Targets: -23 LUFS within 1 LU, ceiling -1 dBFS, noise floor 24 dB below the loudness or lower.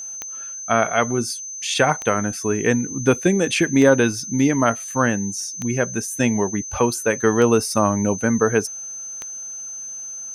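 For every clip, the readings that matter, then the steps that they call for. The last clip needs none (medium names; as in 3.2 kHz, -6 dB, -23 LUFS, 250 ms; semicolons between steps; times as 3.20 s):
clicks found 6; steady tone 6.2 kHz; tone level -30 dBFS; loudness -20.5 LUFS; peak level -3.0 dBFS; loudness target -23.0 LUFS
-> de-click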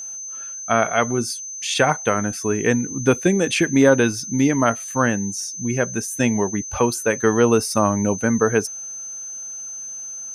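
clicks found 0; steady tone 6.2 kHz; tone level -30 dBFS
-> band-stop 6.2 kHz, Q 30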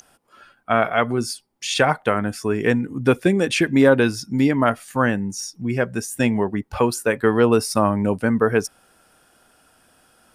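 steady tone not found; loudness -20.5 LUFS; peak level -3.5 dBFS; loudness target -23.0 LUFS
-> trim -2.5 dB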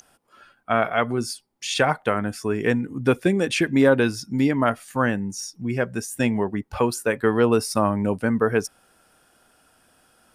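loudness -23.0 LUFS; peak level -6.0 dBFS; noise floor -64 dBFS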